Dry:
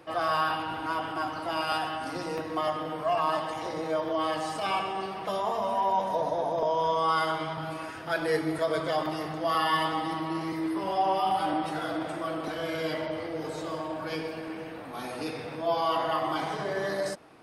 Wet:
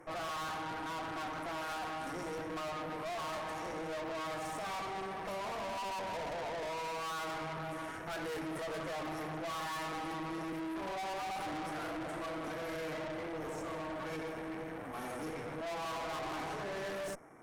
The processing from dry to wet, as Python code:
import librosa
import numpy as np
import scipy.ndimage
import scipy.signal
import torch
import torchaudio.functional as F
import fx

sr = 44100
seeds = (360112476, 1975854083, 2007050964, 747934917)

y = fx.brickwall_bandstop(x, sr, low_hz=2400.0, high_hz=5300.0)
y = fx.tube_stage(y, sr, drive_db=40.0, bias=0.8)
y = y * librosa.db_to_amplitude(2.0)